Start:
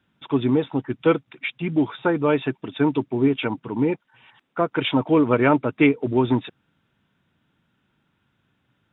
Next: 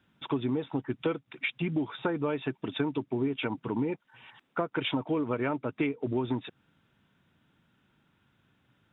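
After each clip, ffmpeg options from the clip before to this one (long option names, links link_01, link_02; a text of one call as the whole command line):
ffmpeg -i in.wav -af "acompressor=threshold=-27dB:ratio=6" out.wav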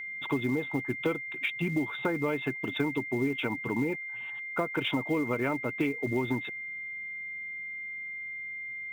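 ffmpeg -i in.wav -af "acrusher=bits=7:mode=log:mix=0:aa=0.000001,aeval=exprs='val(0)+0.0158*sin(2*PI*2100*n/s)':channel_layout=same" out.wav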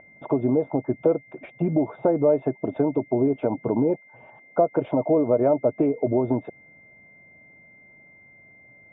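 ffmpeg -i in.wav -filter_complex "[0:a]lowpass=frequency=630:width_type=q:width=5.5,asplit=2[link_01][link_02];[link_02]alimiter=limit=-20.5dB:level=0:latency=1:release=107,volume=1dB[link_03];[link_01][link_03]amix=inputs=2:normalize=0" out.wav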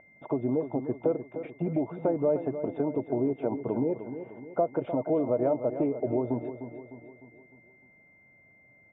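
ffmpeg -i in.wav -af "aecho=1:1:303|606|909|1212|1515:0.299|0.143|0.0688|0.033|0.0158,volume=-6.5dB" out.wav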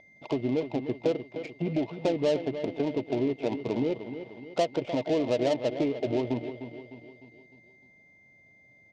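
ffmpeg -i in.wav -af "adynamicsmooth=sensitivity=6:basefreq=1300,aexciter=amount=3.4:drive=10:freq=2200" out.wav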